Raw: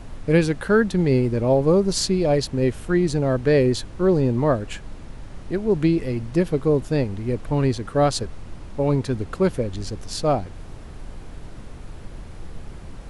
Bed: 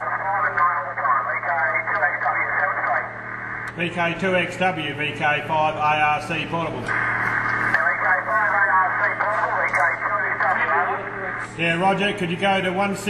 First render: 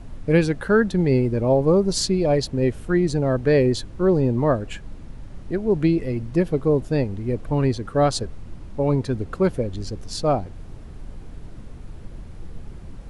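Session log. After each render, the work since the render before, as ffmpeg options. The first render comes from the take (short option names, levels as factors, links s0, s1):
-af "afftdn=nr=6:nf=-39"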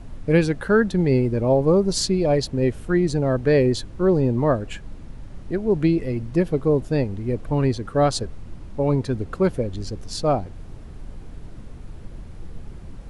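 -af anull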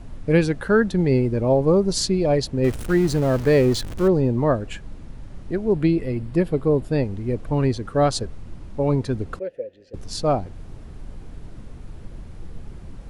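-filter_complex "[0:a]asettb=1/sr,asplit=3[s0][s1][s2];[s0]atrim=end=2.644[s3];[s1]atrim=start=2.64:end=4.08,asetpts=PTS-STARTPTS,afade=t=in:d=0.004:c=qsin,afade=t=out:st=1.436:d=0.004:c=qsin,aeval=exprs='val(0)+0.5*0.0335*sgn(val(0))':c=same[s4];[s2]atrim=start=4.076[s5];[s3][s4]acrossfade=d=0.004:c1=hsin:c2=qsin[s6];[s6][s5]acrossfade=d=0.004:c1=qsin:c2=hsin,asettb=1/sr,asplit=3[s7][s8][s9];[s7]atrim=end=5.734[s10];[s8]atrim=start=5.73:end=7.03,asetpts=PTS-STARTPTS,afade=t=in:d=0.004:c=qsin,afade=t=out:st=1.296:d=0.004:c=qsin,equalizer=f=6100:w=5.2:g=-9.5[s11];[s9]atrim=start=7.026[s12];[s10][s11]acrossfade=d=0.004:c1=hsin:c2=qsin[s13];[s13][s12]acrossfade=d=0.004:c1=qsin:c2=hsin,asettb=1/sr,asplit=3[s14][s15][s16];[s14]atrim=end=9.394[s17];[s15]atrim=start=9.39:end=9.94,asetpts=PTS-STARTPTS,afade=t=in:d=0.004:c=qsin,afade=t=out:st=0.546:d=0.004:c=qsin,asplit=3[s18][s19][s20];[s18]bandpass=f=530:t=q:w=8,volume=1[s21];[s19]bandpass=f=1840:t=q:w=8,volume=0.501[s22];[s20]bandpass=f=2480:t=q:w=8,volume=0.355[s23];[s21][s22][s23]amix=inputs=3:normalize=0[s24];[s16]atrim=start=9.936[s25];[s17][s24]acrossfade=d=0.004:c1=hsin:c2=qsin[s26];[s26][s25]acrossfade=d=0.004:c1=qsin:c2=hsin"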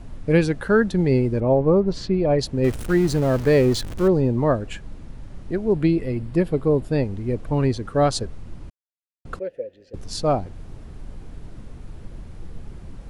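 -filter_complex "[0:a]asettb=1/sr,asplit=3[s0][s1][s2];[s0]atrim=end=1.404[s3];[s1]atrim=start=1.4:end=2.39,asetpts=PTS-STARTPTS,afade=t=in:d=0.004:c=qsin,afade=t=out:st=0.986:d=0.004:c=qsin,lowpass=2500[s4];[s2]atrim=start=2.386[s5];[s3][s4]acrossfade=d=0.004:c1=hsin:c2=qsin[s6];[s6][s5]acrossfade=d=0.004:c1=qsin:c2=hsin,asplit=3[s7][s8][s9];[s7]atrim=end=8.7,asetpts=PTS-STARTPTS,afade=t=out:st=8.696:d=0.004:c=hsin[s10];[s8]atrim=start=8.7:end=9.25,asetpts=PTS-STARTPTS,volume=0[s11];[s9]atrim=start=9.25,asetpts=PTS-STARTPTS,afade=t=in:d=0.004:c=hsin[s12];[s10][s11][s12]concat=n=3:v=0:a=1"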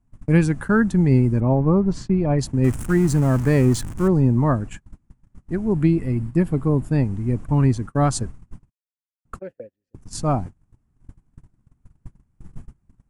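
-af "agate=range=0.0316:threshold=0.0316:ratio=16:detection=peak,equalizer=f=125:t=o:w=1:g=5,equalizer=f=250:t=o:w=1:g=4,equalizer=f=500:t=o:w=1:g=-9,equalizer=f=1000:t=o:w=1:g=4,equalizer=f=4000:t=o:w=1:g=-10,equalizer=f=8000:t=o:w=1:g=7"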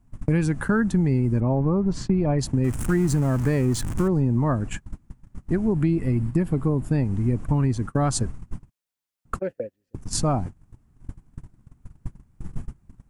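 -filter_complex "[0:a]asplit=2[s0][s1];[s1]alimiter=limit=0.237:level=0:latency=1,volume=1.26[s2];[s0][s2]amix=inputs=2:normalize=0,acompressor=threshold=0.0891:ratio=3"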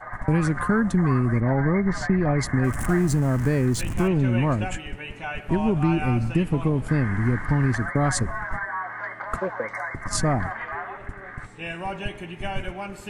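-filter_complex "[1:a]volume=0.237[s0];[0:a][s0]amix=inputs=2:normalize=0"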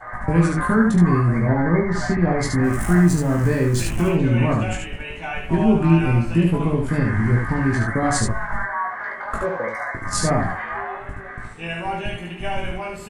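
-filter_complex "[0:a]asplit=2[s0][s1];[s1]adelay=18,volume=0.631[s2];[s0][s2]amix=inputs=2:normalize=0,aecho=1:1:23|73:0.473|0.708"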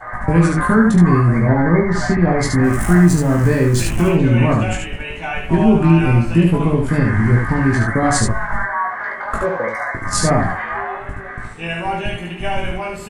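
-af "volume=1.68,alimiter=limit=0.794:level=0:latency=1"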